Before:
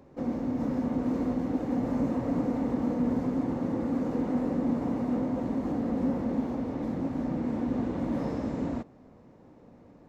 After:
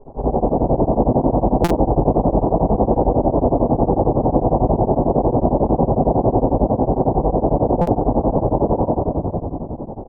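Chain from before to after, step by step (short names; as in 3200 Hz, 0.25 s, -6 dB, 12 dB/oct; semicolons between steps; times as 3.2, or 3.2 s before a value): spectral limiter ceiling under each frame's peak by 27 dB; in parallel at -10 dB: wavefolder -24 dBFS; on the sum: steep low-pass 850 Hz 48 dB/oct; echo 0.176 s -12 dB; reverb RT60 2.1 s, pre-delay 3 ms, DRR -18.5 dB; compressor 2.5:1, threshold -17 dBFS, peak gain reduction 11.5 dB; stuck buffer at 1.64/7.81, samples 256, times 10; beating tremolo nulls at 11 Hz; gain +2 dB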